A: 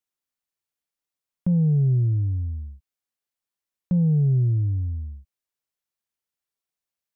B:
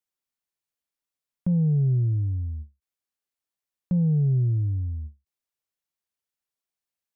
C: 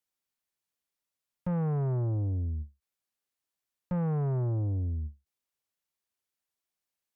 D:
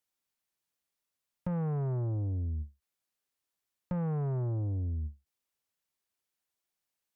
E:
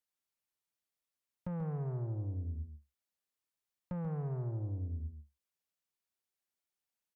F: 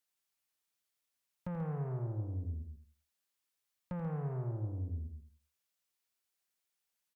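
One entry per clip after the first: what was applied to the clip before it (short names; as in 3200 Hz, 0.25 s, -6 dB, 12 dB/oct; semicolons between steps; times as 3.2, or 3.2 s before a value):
ending taper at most 280 dB/s; gain -2 dB
tube stage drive 29 dB, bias 0.3; gain +1.5 dB
compressor, threshold -32 dBFS, peak gain reduction 4 dB; gain +1 dB
echo 0.137 s -8.5 dB; gain -6 dB
tilt shelf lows -3 dB; feedback echo 84 ms, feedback 27%, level -9 dB; gain +2 dB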